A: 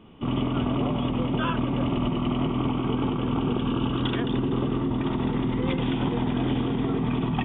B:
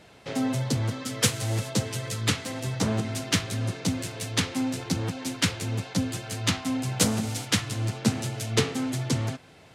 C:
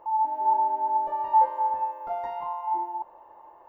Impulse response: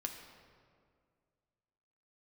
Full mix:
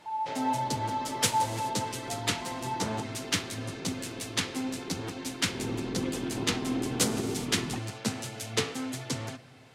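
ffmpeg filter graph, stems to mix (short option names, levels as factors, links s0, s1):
-filter_complex "[0:a]equalizer=f=390:w=1.3:g=10,adelay=350,volume=0.224,afade=t=in:st=5.45:d=0.21:silence=0.316228[s0];[1:a]lowshelf=f=280:g=-8.5,volume=0.531,asplit=2[s1][s2];[s2]volume=0.473[s3];[2:a]volume=0.398[s4];[3:a]atrim=start_sample=2205[s5];[s3][s5]afir=irnorm=-1:irlink=0[s6];[s0][s1][s4][s6]amix=inputs=4:normalize=0"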